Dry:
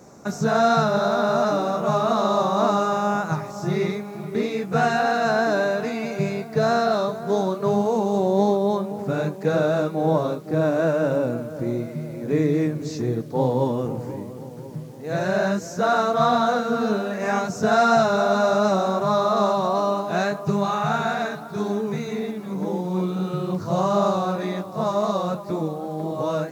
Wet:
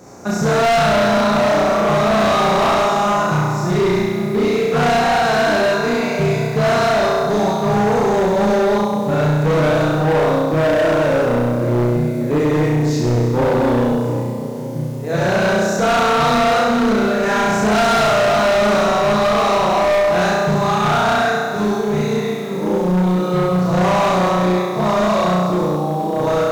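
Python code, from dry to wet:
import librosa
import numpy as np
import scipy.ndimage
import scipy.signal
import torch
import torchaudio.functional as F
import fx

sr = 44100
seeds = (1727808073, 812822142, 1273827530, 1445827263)

y = fx.room_flutter(x, sr, wall_m=5.7, rt60_s=1.5)
y = np.clip(10.0 ** (17.0 / 20.0) * y, -1.0, 1.0) / 10.0 ** (17.0 / 20.0)
y = y * librosa.db_to_amplitude(4.5)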